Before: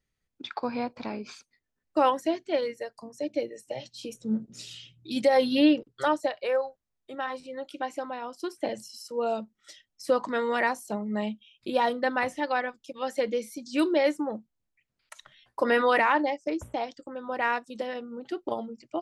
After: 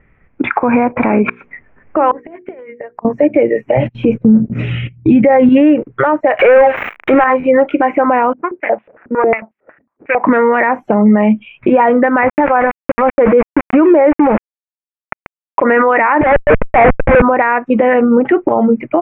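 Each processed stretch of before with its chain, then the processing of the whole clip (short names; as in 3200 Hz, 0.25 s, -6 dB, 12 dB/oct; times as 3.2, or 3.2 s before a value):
1.28–3.05 negative-ratio compressor -33 dBFS + flipped gate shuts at -28 dBFS, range -31 dB + notches 60/120/180/240/300/360/420/480 Hz
3.77–5.49 gate -51 dBFS, range -21 dB + low shelf 250 Hz +12 dB
6.39–7.24 switching spikes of -29 dBFS + sample leveller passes 3
8.33–10.24 median filter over 41 samples + stepped band-pass 11 Hz 240–3400 Hz
12.27–15.64 resonant high shelf 1600 Hz -6.5 dB, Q 1.5 + sample gate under -36.5 dBFS + sustainer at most 130 dB/s
16.21–17.22 brick-wall FIR band-pass 430–3700 Hz + Schmitt trigger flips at -43 dBFS
whole clip: elliptic low-pass 2300 Hz, stop band 50 dB; compressor 6:1, threshold -33 dBFS; maximiser +33 dB; gain -1 dB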